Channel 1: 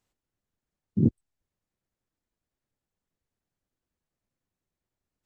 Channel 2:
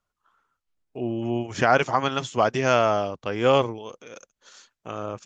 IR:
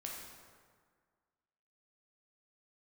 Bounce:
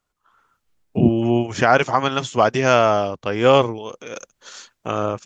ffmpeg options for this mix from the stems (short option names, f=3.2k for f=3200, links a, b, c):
-filter_complex "[0:a]volume=-2dB[a];[1:a]volume=2.5dB[b];[a][b]amix=inputs=2:normalize=0,dynaudnorm=f=230:g=3:m=8dB"